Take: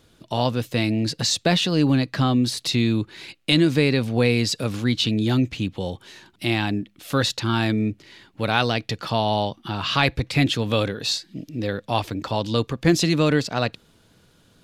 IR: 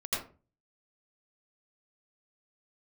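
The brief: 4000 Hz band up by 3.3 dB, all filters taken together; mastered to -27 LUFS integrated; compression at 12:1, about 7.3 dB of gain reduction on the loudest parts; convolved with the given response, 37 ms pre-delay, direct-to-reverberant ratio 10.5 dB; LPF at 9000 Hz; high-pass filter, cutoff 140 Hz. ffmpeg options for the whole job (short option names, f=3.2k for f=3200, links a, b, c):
-filter_complex "[0:a]highpass=140,lowpass=9k,equalizer=f=4k:t=o:g=4,acompressor=threshold=-20dB:ratio=12,asplit=2[a][b];[1:a]atrim=start_sample=2205,adelay=37[c];[b][c]afir=irnorm=-1:irlink=0,volume=-16dB[d];[a][d]amix=inputs=2:normalize=0,volume=-1dB"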